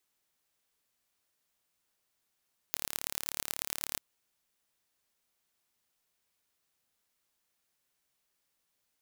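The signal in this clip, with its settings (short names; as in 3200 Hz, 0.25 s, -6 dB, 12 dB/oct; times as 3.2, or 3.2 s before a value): pulse train 36.4/s, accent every 4, -3.5 dBFS 1.26 s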